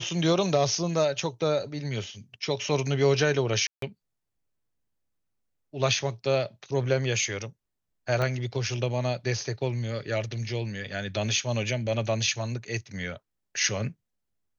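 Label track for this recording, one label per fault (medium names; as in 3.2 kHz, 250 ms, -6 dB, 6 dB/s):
3.670000	3.820000	dropout 153 ms
8.220000	8.220000	pop -16 dBFS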